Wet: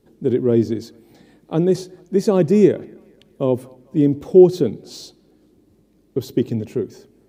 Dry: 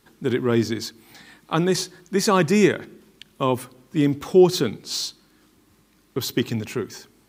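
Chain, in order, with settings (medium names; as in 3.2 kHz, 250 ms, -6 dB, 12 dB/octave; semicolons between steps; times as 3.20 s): resonant low shelf 790 Hz +12.5 dB, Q 1.5; on a send: feedback echo behind a band-pass 222 ms, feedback 44%, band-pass 1.2 kHz, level -22 dB; on the sum: trim -10 dB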